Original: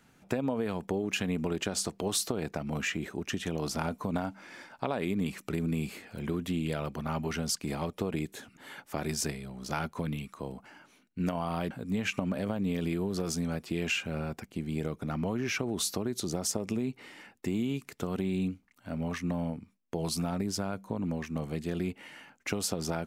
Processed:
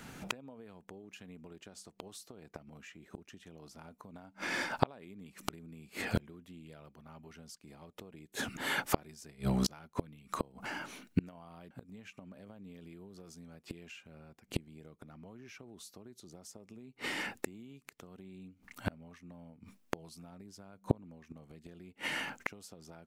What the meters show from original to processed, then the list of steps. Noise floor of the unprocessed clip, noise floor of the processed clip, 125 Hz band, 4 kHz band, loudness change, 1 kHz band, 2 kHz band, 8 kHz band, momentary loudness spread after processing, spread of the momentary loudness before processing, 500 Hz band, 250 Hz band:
-64 dBFS, -68 dBFS, -9.0 dB, -7.0 dB, -6.0 dB, -4.5 dB, -2.5 dB, -12.0 dB, 18 LU, 9 LU, -9.5 dB, -10.0 dB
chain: inverted gate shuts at -29 dBFS, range -33 dB; trim +13 dB

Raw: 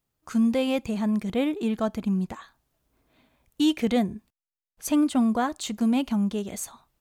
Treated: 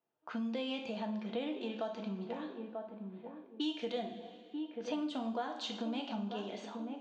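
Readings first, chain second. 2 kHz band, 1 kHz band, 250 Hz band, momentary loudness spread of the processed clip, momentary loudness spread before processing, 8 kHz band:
-10.0 dB, -9.5 dB, -14.5 dB, 8 LU, 12 LU, under -20 dB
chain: cabinet simulation 390–5200 Hz, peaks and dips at 1.2 kHz -6 dB, 2.1 kHz -7 dB, 3.1 kHz +3 dB; on a send: filtered feedback delay 939 ms, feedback 29%, low-pass 1 kHz, level -11 dB; on the sum: level-controlled noise filter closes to 1.7 kHz, open at -25 dBFS; two-slope reverb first 0.49 s, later 1.9 s, from -18 dB, DRR 2.5 dB; compression 3:1, threshold -38 dBFS, peak gain reduction 14.5 dB

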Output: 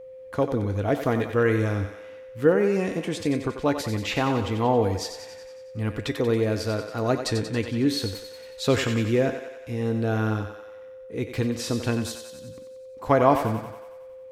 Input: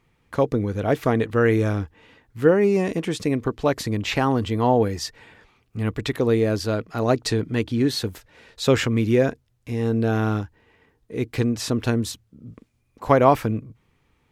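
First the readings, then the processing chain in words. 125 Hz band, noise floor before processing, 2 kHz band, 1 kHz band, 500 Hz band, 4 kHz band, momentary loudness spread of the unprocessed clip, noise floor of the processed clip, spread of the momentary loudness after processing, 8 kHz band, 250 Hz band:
-3.0 dB, -67 dBFS, -2.0 dB, -2.5 dB, -2.5 dB, -2.0 dB, 12 LU, -43 dBFS, 19 LU, -2.0 dB, -3.0 dB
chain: feedback comb 96 Hz, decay 0.27 s, harmonics odd, mix 60%; thinning echo 92 ms, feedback 64%, high-pass 410 Hz, level -8 dB; whistle 520 Hz -43 dBFS; trim +3 dB

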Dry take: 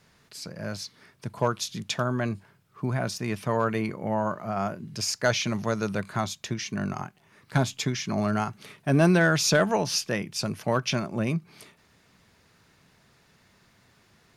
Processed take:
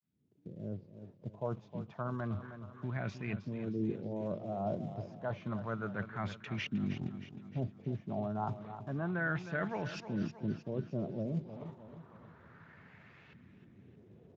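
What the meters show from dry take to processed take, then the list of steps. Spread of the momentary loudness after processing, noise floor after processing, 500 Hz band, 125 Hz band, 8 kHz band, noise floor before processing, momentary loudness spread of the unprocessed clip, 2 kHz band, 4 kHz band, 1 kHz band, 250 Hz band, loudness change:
21 LU, -61 dBFS, -12.0 dB, -9.5 dB, under -30 dB, -62 dBFS, 14 LU, -12.0 dB, -21.5 dB, -12.5 dB, -9.5 dB, -11.5 dB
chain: fade-in on the opening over 1.87 s; bass shelf 150 Hz +7.5 dB; reverse; compression 8:1, threshold -36 dBFS, peak gain reduction 21 dB; reverse; LFO low-pass saw up 0.3 Hz 250–2700 Hz; on a send: feedback delay 312 ms, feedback 51%, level -11 dB; on the sum: Speex 17 kbps 16 kHz

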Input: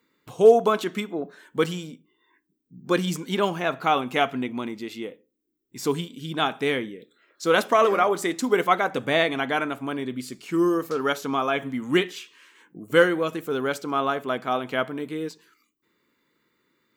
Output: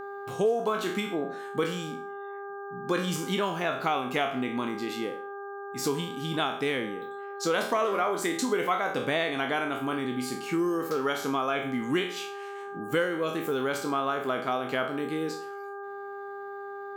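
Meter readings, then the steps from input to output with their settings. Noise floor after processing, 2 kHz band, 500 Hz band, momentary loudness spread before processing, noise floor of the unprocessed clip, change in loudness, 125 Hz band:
-39 dBFS, -4.0 dB, -6.0 dB, 13 LU, -74 dBFS, -6.0 dB, -3.5 dB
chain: spectral sustain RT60 0.42 s; mains buzz 400 Hz, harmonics 4, -39 dBFS -4 dB/octave; compression 3:1, threshold -26 dBFS, peak gain reduction 13 dB

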